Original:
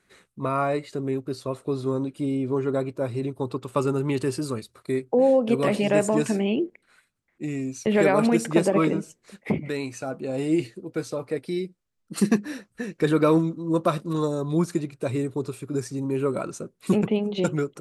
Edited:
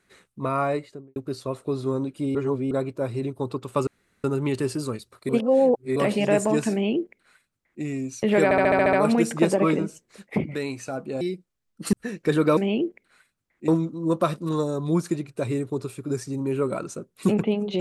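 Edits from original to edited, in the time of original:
0.69–1.16 studio fade out
2.35–2.71 reverse
3.87 insert room tone 0.37 s
4.92–5.59 reverse
6.35–7.46 copy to 13.32
8.07 stutter 0.07 s, 8 plays
10.35–11.52 cut
12.24–12.68 cut

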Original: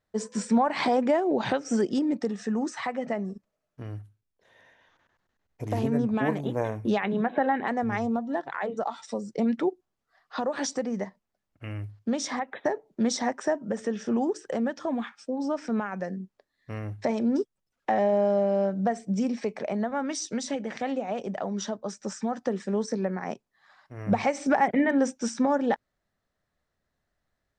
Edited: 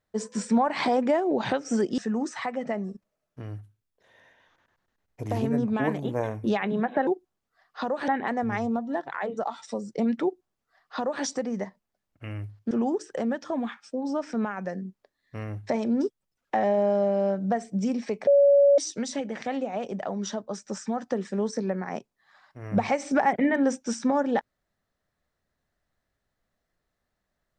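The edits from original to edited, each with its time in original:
1.98–2.39 cut
9.63–10.64 copy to 7.48
12.11–14.06 cut
19.62–20.13 bleep 565 Hz -14 dBFS

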